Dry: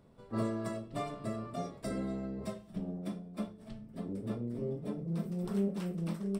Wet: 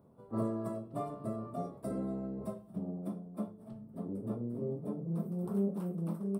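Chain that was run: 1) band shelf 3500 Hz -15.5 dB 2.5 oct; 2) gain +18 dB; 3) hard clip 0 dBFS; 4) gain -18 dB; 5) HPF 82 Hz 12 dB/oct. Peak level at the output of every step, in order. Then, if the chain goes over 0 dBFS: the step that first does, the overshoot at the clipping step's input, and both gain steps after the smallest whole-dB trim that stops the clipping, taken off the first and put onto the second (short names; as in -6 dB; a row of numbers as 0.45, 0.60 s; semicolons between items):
-23.0, -5.0, -5.0, -23.0, -22.5 dBFS; no overload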